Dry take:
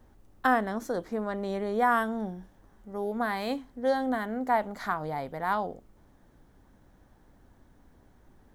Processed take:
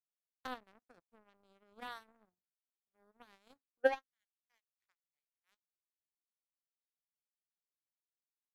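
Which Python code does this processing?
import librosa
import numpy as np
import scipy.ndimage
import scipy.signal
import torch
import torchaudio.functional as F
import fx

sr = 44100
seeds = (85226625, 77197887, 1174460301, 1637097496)

y = x + 10.0 ** (-23.5 / 20.0) * np.pad(x, (int(271 * sr / 1000.0), 0))[:len(x)]
y = fx.filter_sweep_highpass(y, sr, from_hz=91.0, to_hz=2600.0, start_s=3.53, end_s=4.14, q=6.1)
y = fx.power_curve(y, sr, exponent=3.0)
y = F.gain(torch.from_numpy(y), -6.0).numpy()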